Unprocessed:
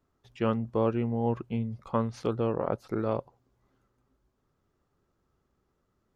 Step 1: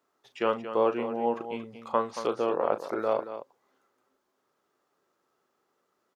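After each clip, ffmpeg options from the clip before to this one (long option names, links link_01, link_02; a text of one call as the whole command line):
ffmpeg -i in.wav -af "highpass=440,aecho=1:1:37.9|227.4:0.282|0.282,volume=4.5dB" out.wav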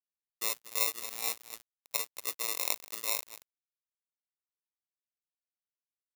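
ffmpeg -i in.wav -af "acrusher=samples=28:mix=1:aa=0.000001,crystalizer=i=7:c=0,aeval=exprs='sgn(val(0))*max(abs(val(0))-0.188,0)':channel_layout=same,volume=-12.5dB" out.wav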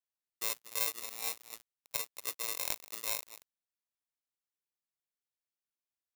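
ffmpeg -i in.wav -af "aeval=exprs='(tanh(2.51*val(0)+0.55)-tanh(0.55))/2.51':channel_layout=same" out.wav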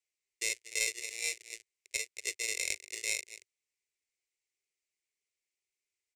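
ffmpeg -i in.wav -filter_complex "[0:a]firequalizer=gain_entry='entry(100,0);entry(160,-27);entry(380,8);entry(790,-14);entry(1200,-21);entry(2100,13);entry(3300,2);entry(5400,6);entry(7700,8);entry(15000,-21)':delay=0.05:min_phase=1,asplit=2[link_01][link_02];[link_02]alimiter=limit=-19dB:level=0:latency=1:release=439,volume=-1dB[link_03];[link_01][link_03]amix=inputs=2:normalize=0,volume=-5dB" out.wav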